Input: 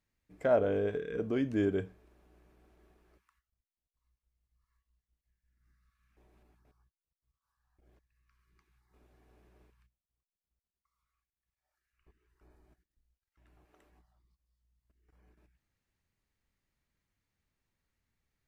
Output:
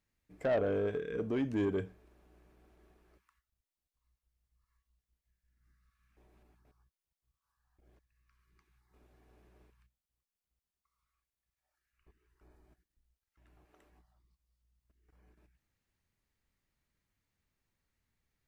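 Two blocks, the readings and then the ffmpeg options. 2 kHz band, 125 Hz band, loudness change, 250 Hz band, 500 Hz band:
-1.5 dB, -1.5 dB, -2.5 dB, -2.0 dB, -2.5 dB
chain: -af "asoftclip=type=tanh:threshold=0.0562"

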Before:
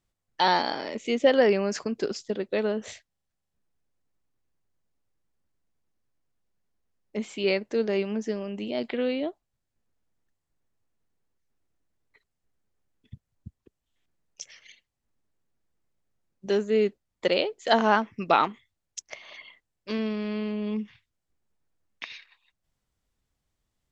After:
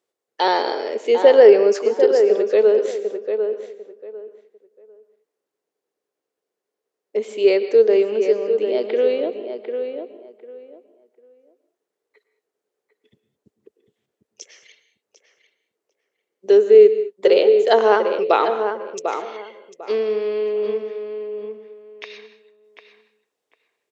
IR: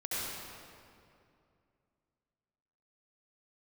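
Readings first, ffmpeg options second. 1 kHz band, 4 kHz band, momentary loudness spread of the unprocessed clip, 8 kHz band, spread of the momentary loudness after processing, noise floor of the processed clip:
+4.5 dB, +1.5 dB, 20 LU, no reading, 19 LU, -83 dBFS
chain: -filter_complex "[0:a]highpass=f=430:t=q:w=4.9,asplit=2[s0][s1];[s1]adelay=748,lowpass=f=2100:p=1,volume=0.447,asplit=2[s2][s3];[s3]adelay=748,lowpass=f=2100:p=1,volume=0.22,asplit=2[s4][s5];[s5]adelay=748,lowpass=f=2100:p=1,volume=0.22[s6];[s0][s2][s4][s6]amix=inputs=4:normalize=0,asplit=2[s7][s8];[1:a]atrim=start_sample=2205,afade=t=out:st=0.2:d=0.01,atrim=end_sample=9261,asetrate=29547,aresample=44100[s9];[s8][s9]afir=irnorm=-1:irlink=0,volume=0.168[s10];[s7][s10]amix=inputs=2:normalize=0"

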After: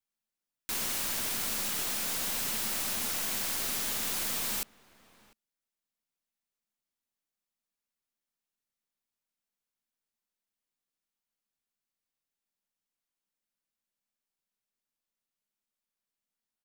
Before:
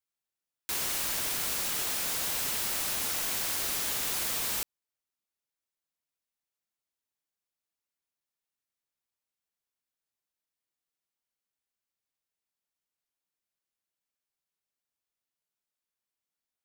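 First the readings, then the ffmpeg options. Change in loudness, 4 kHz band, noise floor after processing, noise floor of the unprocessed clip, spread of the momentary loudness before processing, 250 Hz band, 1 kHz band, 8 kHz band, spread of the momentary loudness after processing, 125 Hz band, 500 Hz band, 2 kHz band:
-1.5 dB, -1.5 dB, under -85 dBFS, under -85 dBFS, 3 LU, +2.5 dB, -1.0 dB, -1.5 dB, 3 LU, 0.0 dB, -1.0 dB, -1.5 dB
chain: -filter_complex "[0:a]aeval=exprs='if(lt(val(0),0),0.708*val(0),val(0))':c=same,equalizer=f=220:t=o:w=0.37:g=8.5,asplit=2[s0][s1];[s1]adelay=699.7,volume=0.0891,highshelf=f=4000:g=-15.7[s2];[s0][s2]amix=inputs=2:normalize=0"

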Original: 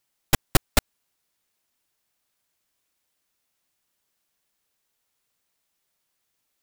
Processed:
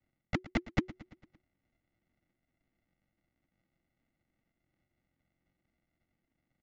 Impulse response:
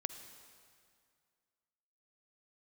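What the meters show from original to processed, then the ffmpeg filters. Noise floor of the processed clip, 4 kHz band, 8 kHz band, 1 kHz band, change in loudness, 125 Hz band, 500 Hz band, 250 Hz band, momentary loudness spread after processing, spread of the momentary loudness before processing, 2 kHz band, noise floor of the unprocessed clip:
under -85 dBFS, -18.5 dB, -29.5 dB, -13.0 dB, -11.5 dB, -9.5 dB, -11.0 dB, -3.5 dB, 16 LU, 3 LU, -9.5 dB, -77 dBFS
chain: -af "highpass=43,aresample=16000,acrusher=samples=23:mix=1:aa=0.000001,aresample=44100,lowshelf=f=160:g=-6.5,bandreject=f=1700:w=18,areverse,acompressor=threshold=0.0355:ratio=6,areverse,equalizer=f=2400:w=5.3:g=10,afreqshift=-370,lowpass=3900,aecho=1:1:113|226|339|452|565:0.119|0.0689|0.04|0.0232|0.0134,volume=1.19"

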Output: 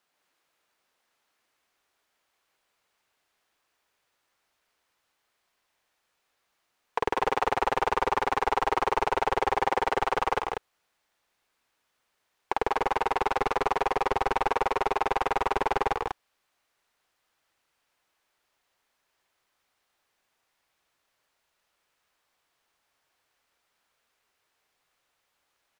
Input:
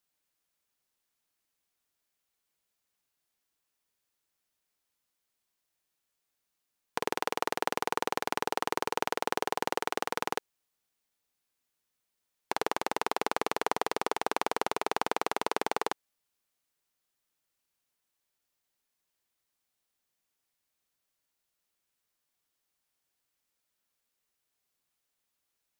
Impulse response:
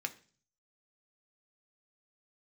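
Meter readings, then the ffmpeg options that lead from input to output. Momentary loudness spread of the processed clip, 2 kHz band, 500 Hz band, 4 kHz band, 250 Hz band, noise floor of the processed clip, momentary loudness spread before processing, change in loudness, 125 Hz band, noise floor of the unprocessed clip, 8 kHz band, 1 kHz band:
5 LU, +3.5 dB, +5.0 dB, -0.5 dB, +2.0 dB, -77 dBFS, 3 LU, +5.0 dB, +9.0 dB, -83 dBFS, -5.5 dB, +6.5 dB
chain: -filter_complex "[0:a]asplit=2[s0][s1];[s1]highpass=f=720:p=1,volume=12.6,asoftclip=type=tanh:threshold=0.355[s2];[s0][s2]amix=inputs=2:normalize=0,lowpass=f=1300:p=1,volume=0.501,asubboost=boost=3:cutoff=110,aecho=1:1:157.4|192.4:0.398|0.562"

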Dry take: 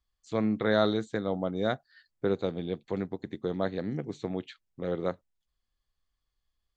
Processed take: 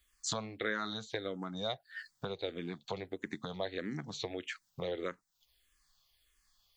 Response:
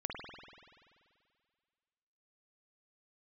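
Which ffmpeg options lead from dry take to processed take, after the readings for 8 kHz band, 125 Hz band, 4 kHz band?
no reading, -9.5 dB, +0.5 dB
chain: -filter_complex "[0:a]acompressor=threshold=0.00891:ratio=6,tiltshelf=f=1100:g=-7.5,asplit=2[s0][s1];[s1]afreqshift=-1.6[s2];[s0][s2]amix=inputs=2:normalize=1,volume=4.47"

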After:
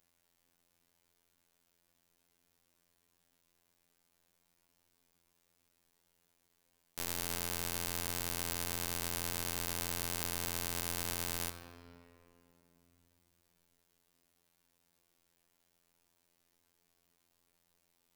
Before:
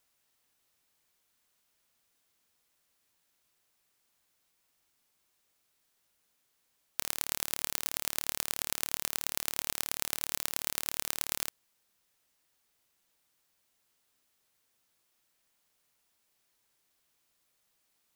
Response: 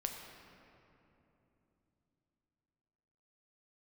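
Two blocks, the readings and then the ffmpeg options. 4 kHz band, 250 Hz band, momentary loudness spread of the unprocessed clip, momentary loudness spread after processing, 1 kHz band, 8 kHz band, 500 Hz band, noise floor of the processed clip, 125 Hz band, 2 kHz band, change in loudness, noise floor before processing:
-3.0 dB, +5.5 dB, 2 LU, 3 LU, 0.0 dB, -3.5 dB, +2.5 dB, -79 dBFS, +9.0 dB, -2.0 dB, -3.0 dB, -76 dBFS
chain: -filter_complex "[0:a]asplit=2[s0][s1];[1:a]atrim=start_sample=2205[s2];[s1][s2]afir=irnorm=-1:irlink=0,volume=1.12[s3];[s0][s3]amix=inputs=2:normalize=0,afftfilt=real='hypot(re,im)*cos(PI*b)':imag='0':win_size=2048:overlap=0.75,alimiter=limit=0.447:level=0:latency=1:release=11,tiltshelf=f=640:g=4.5,bandreject=f=80.81:t=h:w=4,bandreject=f=161.62:t=h:w=4,bandreject=f=242.43:t=h:w=4,bandreject=f=323.24:t=h:w=4,bandreject=f=404.05:t=h:w=4,bandreject=f=484.86:t=h:w=4,bandreject=f=565.67:t=h:w=4,bandreject=f=646.48:t=h:w=4,bandreject=f=727.29:t=h:w=4,bandreject=f=808.1:t=h:w=4,bandreject=f=888.91:t=h:w=4,bandreject=f=969.72:t=h:w=4,bandreject=f=1050.53:t=h:w=4,bandreject=f=1131.34:t=h:w=4,bandreject=f=1212.15:t=h:w=4,bandreject=f=1292.96:t=h:w=4"

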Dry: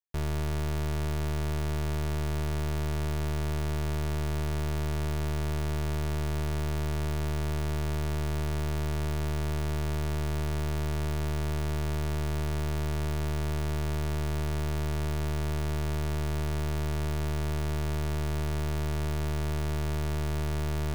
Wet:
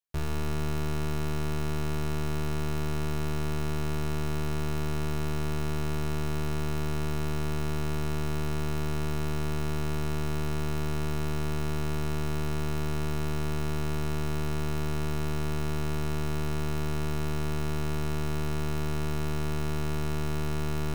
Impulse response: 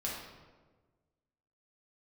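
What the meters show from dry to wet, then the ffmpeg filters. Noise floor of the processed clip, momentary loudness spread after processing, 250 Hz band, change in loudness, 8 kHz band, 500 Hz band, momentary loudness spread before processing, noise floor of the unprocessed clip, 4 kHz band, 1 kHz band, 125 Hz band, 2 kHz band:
-29 dBFS, 0 LU, +2.5 dB, -0.5 dB, +0.5 dB, +1.0 dB, 0 LU, -29 dBFS, +0.5 dB, +1.5 dB, -1.0 dB, +1.0 dB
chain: -filter_complex "[0:a]asplit=2[s0][s1];[1:a]atrim=start_sample=2205,adelay=14[s2];[s1][s2]afir=irnorm=-1:irlink=0,volume=0.376[s3];[s0][s3]amix=inputs=2:normalize=0"

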